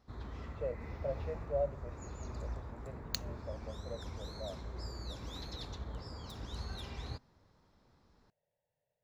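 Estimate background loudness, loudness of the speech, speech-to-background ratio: −45.0 LKFS, −43.5 LKFS, 1.5 dB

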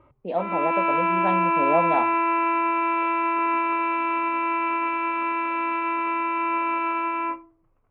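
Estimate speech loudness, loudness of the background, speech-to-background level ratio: −28.0 LKFS, −23.5 LKFS, −4.5 dB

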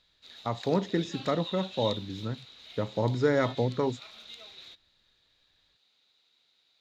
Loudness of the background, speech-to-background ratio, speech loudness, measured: −43.0 LKFS, 12.5 dB, −30.5 LKFS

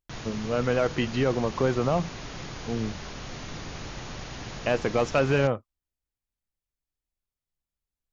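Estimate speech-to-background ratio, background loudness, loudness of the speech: 11.5 dB, −38.5 LKFS, −27.0 LKFS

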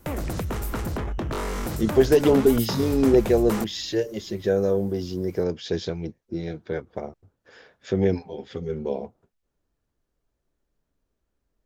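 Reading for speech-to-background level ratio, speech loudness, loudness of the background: 6.0 dB, −24.0 LKFS, −30.0 LKFS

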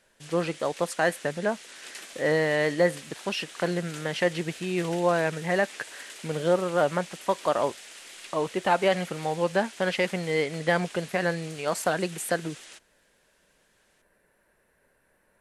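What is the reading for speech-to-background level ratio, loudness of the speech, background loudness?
15.5 dB, −27.5 LKFS, −43.0 LKFS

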